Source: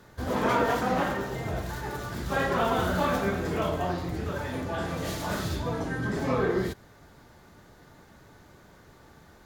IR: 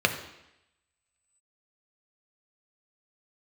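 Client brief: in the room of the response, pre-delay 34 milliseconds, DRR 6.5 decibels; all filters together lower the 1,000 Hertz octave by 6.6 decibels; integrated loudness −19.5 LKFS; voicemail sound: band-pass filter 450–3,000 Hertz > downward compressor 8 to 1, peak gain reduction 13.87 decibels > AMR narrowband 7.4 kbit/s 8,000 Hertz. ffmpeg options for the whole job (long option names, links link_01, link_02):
-filter_complex "[0:a]equalizer=frequency=1000:width_type=o:gain=-8.5,asplit=2[link_01][link_02];[1:a]atrim=start_sample=2205,adelay=34[link_03];[link_02][link_03]afir=irnorm=-1:irlink=0,volume=-21dB[link_04];[link_01][link_04]amix=inputs=2:normalize=0,highpass=450,lowpass=3000,acompressor=threshold=-38dB:ratio=8,volume=24.5dB" -ar 8000 -c:a libopencore_amrnb -b:a 7400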